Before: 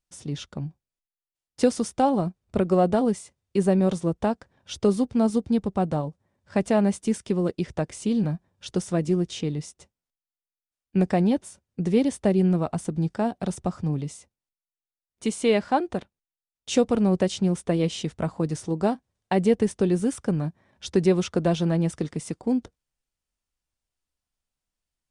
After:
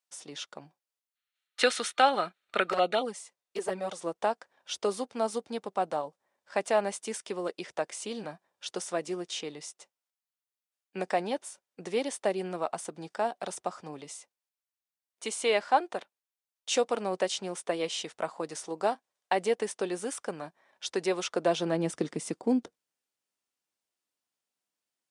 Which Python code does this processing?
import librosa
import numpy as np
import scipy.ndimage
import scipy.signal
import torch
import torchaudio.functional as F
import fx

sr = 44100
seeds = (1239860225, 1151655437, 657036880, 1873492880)

y = fx.filter_sweep_highpass(x, sr, from_hz=630.0, to_hz=280.0, start_s=21.21, end_s=21.98, q=0.81)
y = fx.spec_box(y, sr, start_s=1.15, length_s=1.88, low_hz=1200.0, high_hz=4400.0, gain_db=12)
y = fx.env_flanger(y, sr, rest_ms=10.3, full_db=-20.0, at=(2.72, 3.99))